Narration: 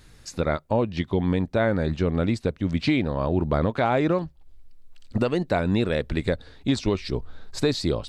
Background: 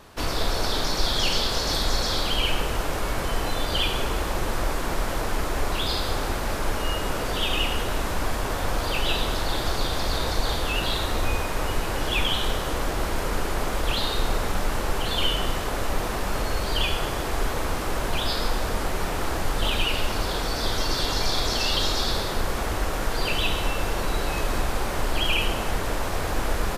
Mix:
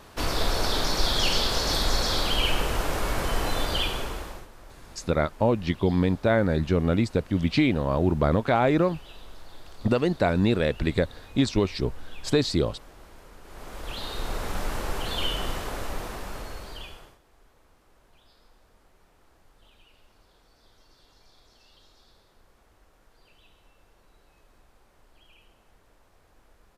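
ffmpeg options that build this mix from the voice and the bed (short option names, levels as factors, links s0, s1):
-filter_complex "[0:a]adelay=4700,volume=1.06[s0];[1:a]volume=7.94,afade=t=out:st=3.6:d=0.88:silence=0.0749894,afade=t=in:st=13.42:d=1.18:silence=0.11885,afade=t=out:st=15.52:d=1.67:silence=0.0316228[s1];[s0][s1]amix=inputs=2:normalize=0"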